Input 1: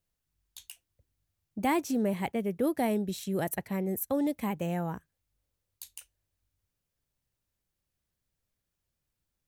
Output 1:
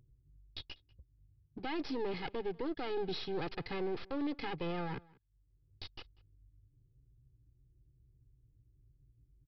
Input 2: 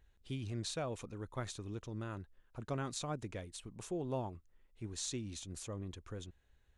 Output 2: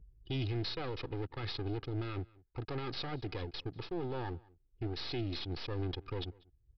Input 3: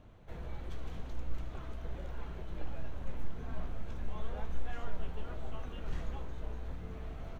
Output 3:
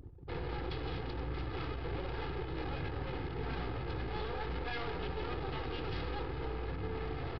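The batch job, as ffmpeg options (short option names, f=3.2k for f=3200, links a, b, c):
-filter_complex "[0:a]highpass=130,anlmdn=0.001,aecho=1:1:2.4:0.95,areverse,acompressor=threshold=-39dB:ratio=12,areverse,alimiter=level_in=14.5dB:limit=-24dB:level=0:latency=1:release=23,volume=-14.5dB,acrossover=split=310[a][b];[a]acompressor=mode=upward:threshold=-52dB:ratio=2.5[c];[b]aeval=exprs='max(val(0),0)':c=same[d];[c][d]amix=inputs=2:normalize=0,crystalizer=i=2:c=0,asplit=2[e][f];[f]adelay=192.4,volume=-24dB,highshelf=f=4k:g=-4.33[g];[e][g]amix=inputs=2:normalize=0,aresample=11025,aresample=44100,volume=11dB"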